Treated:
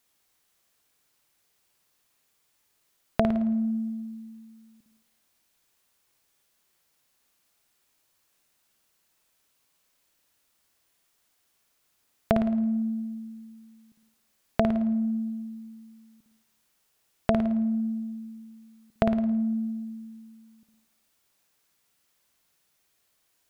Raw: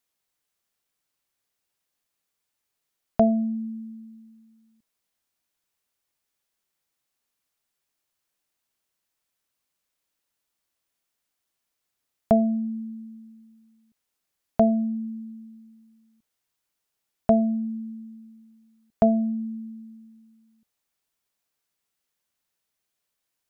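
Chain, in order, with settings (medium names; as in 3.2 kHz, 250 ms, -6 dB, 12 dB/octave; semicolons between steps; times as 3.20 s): compression 5:1, threshold -31 dBFS, peak gain reduction 15.5 dB; flutter echo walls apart 9.4 m, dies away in 0.55 s; reverberation RT60 1.2 s, pre-delay 48 ms, DRR 16.5 dB; trim +8.5 dB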